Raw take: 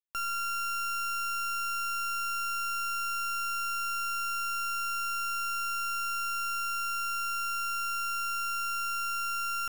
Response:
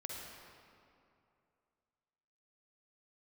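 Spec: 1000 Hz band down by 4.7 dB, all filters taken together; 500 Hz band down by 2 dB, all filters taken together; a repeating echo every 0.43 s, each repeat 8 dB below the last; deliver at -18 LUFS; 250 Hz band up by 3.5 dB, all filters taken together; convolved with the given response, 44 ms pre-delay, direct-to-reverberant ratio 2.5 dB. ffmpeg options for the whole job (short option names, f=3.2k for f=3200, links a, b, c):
-filter_complex "[0:a]equalizer=f=250:t=o:g=7.5,equalizer=f=500:t=o:g=-3.5,equalizer=f=1k:t=o:g=-8.5,aecho=1:1:430|860|1290|1720|2150:0.398|0.159|0.0637|0.0255|0.0102,asplit=2[a][b];[1:a]atrim=start_sample=2205,adelay=44[c];[b][c]afir=irnorm=-1:irlink=0,volume=-1.5dB[d];[a][d]amix=inputs=2:normalize=0,volume=16.5dB"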